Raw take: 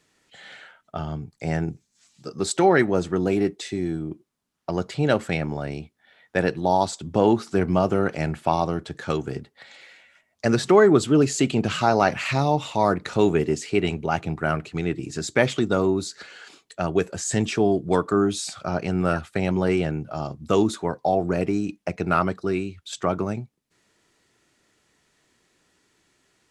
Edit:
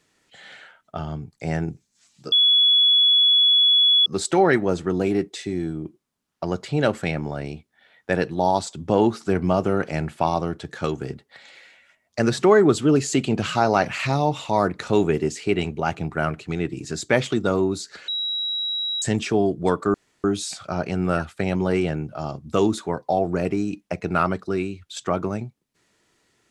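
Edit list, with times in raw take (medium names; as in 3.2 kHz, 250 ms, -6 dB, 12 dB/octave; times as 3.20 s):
2.32 s: add tone 3.39 kHz -13 dBFS 1.74 s
16.34–17.28 s: bleep 3.87 kHz -23 dBFS
18.20 s: insert room tone 0.30 s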